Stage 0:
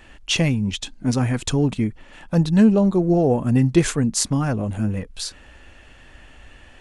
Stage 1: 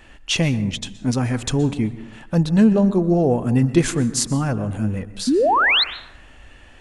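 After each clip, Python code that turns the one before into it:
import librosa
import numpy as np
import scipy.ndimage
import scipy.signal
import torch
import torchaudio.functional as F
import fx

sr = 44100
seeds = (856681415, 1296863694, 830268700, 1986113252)

y = fx.spec_paint(x, sr, seeds[0], shape='rise', start_s=5.27, length_s=0.57, low_hz=230.0, high_hz=4400.0, level_db=-16.0)
y = fx.rev_plate(y, sr, seeds[1], rt60_s=0.9, hf_ratio=0.45, predelay_ms=110, drr_db=14.0)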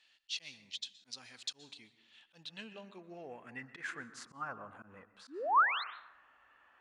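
y = fx.auto_swell(x, sr, attack_ms=101.0)
y = fx.filter_sweep_bandpass(y, sr, from_hz=4200.0, to_hz=1200.0, start_s=1.91, end_s=4.55, q=3.3)
y = F.gain(torch.from_numpy(y), -6.0).numpy()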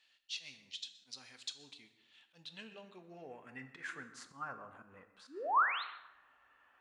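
y = fx.rev_double_slope(x, sr, seeds[2], early_s=0.56, late_s=1.6, knee_db=-25, drr_db=9.5)
y = F.gain(torch.from_numpy(y), -3.0).numpy()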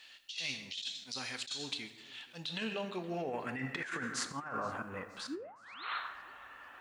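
y = fx.over_compress(x, sr, threshold_db=-51.0, ratio=-1.0)
y = fx.echo_warbled(y, sr, ms=471, feedback_pct=45, rate_hz=2.8, cents=157, wet_db=-23.0)
y = F.gain(torch.from_numpy(y), 8.5).numpy()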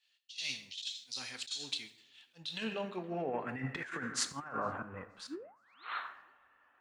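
y = fx.band_widen(x, sr, depth_pct=100)
y = F.gain(torch.from_numpy(y), -1.0).numpy()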